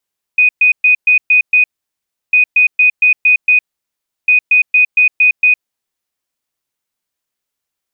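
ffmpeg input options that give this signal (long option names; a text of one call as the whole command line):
ffmpeg -f lavfi -i "aevalsrc='0.531*sin(2*PI*2490*t)*clip(min(mod(mod(t,1.95),0.23),0.11-mod(mod(t,1.95),0.23))/0.005,0,1)*lt(mod(t,1.95),1.38)':duration=5.85:sample_rate=44100" out.wav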